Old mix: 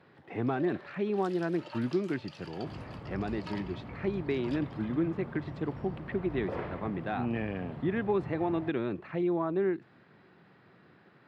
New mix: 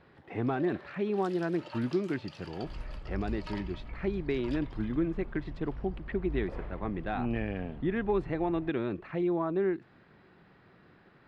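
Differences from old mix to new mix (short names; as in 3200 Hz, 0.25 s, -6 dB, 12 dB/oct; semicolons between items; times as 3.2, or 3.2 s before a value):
second sound -8.5 dB; master: remove HPF 95 Hz 24 dB/oct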